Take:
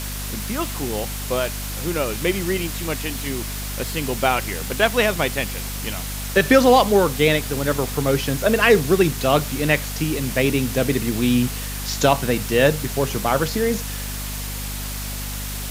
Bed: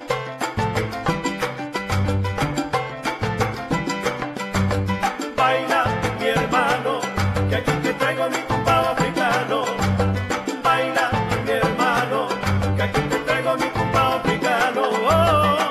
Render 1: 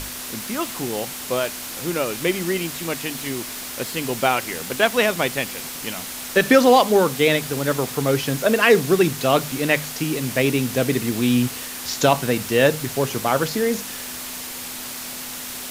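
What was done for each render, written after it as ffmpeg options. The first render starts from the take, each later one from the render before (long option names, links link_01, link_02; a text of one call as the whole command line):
ffmpeg -i in.wav -af "bandreject=frequency=50:width_type=h:width=6,bandreject=frequency=100:width_type=h:width=6,bandreject=frequency=150:width_type=h:width=6,bandreject=frequency=200:width_type=h:width=6" out.wav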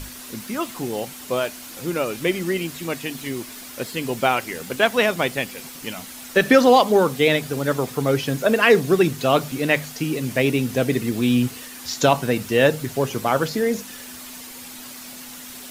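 ffmpeg -i in.wav -af "afftdn=noise_reduction=8:noise_floor=-33" out.wav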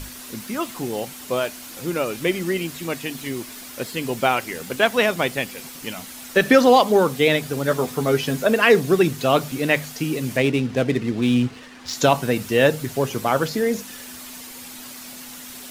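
ffmpeg -i in.wav -filter_complex "[0:a]asettb=1/sr,asplit=3[link_01][link_02][link_03];[link_01]atrim=end=7.674[link_04];[link_02]atrim=start=7.67:end=8.44,asetpts=PTS-STARTPTS,afade=type=in:duration=0.004:curve=qsin,afade=type=out:start_time=0.766:duration=0.004:curve=qsin,asplit=2[link_05][link_06];[link_06]adelay=12,volume=-6dB[link_07];[link_05][link_07]amix=inputs=2:normalize=0,atrim=end_sample=33957[link_08];[link_03]atrim=start=8.436[link_09];[link_04][link_08]acrossfade=duration=0.004:curve1=hsin:curve2=qsin[link_10];[link_10][link_09]acrossfade=duration=0.004:curve1=qsin:curve2=hsin,asettb=1/sr,asplit=3[link_11][link_12][link_13];[link_11]atrim=end=10.374[link_14];[link_12]atrim=start=10.37:end=11.93,asetpts=PTS-STARTPTS,afade=type=in:duration=0.004:curve=qsin,afade=type=out:start_time=1.556:duration=0.004:curve=qsin,adynamicsmooth=sensitivity=6.5:basefreq=2400[link_15];[link_13]atrim=start=11.926[link_16];[link_14][link_15]acrossfade=duration=0.004:curve1=hsin:curve2=qsin[link_17];[link_17][link_16]acrossfade=duration=0.004:curve1=qsin:curve2=hsin" out.wav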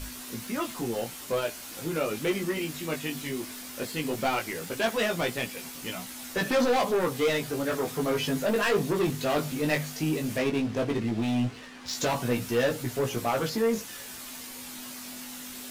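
ffmpeg -i in.wav -af "asoftclip=type=tanh:threshold=-18.5dB,flanger=delay=16.5:depth=3.5:speed=0.16" out.wav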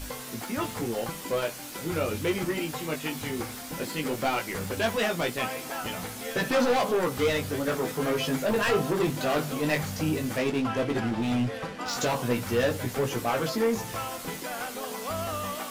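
ffmpeg -i in.wav -i bed.wav -filter_complex "[1:a]volume=-16.5dB[link_01];[0:a][link_01]amix=inputs=2:normalize=0" out.wav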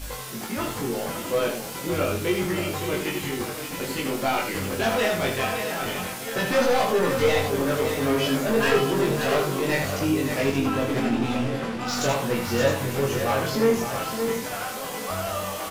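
ffmpeg -i in.wav -filter_complex "[0:a]asplit=2[link_01][link_02];[link_02]adelay=22,volume=-2dB[link_03];[link_01][link_03]amix=inputs=2:normalize=0,asplit=2[link_04][link_05];[link_05]aecho=0:1:77|567|661:0.473|0.398|0.335[link_06];[link_04][link_06]amix=inputs=2:normalize=0" out.wav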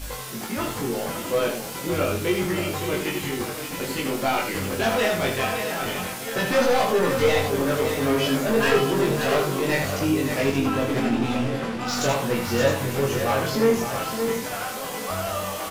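ffmpeg -i in.wav -af "volume=1dB" out.wav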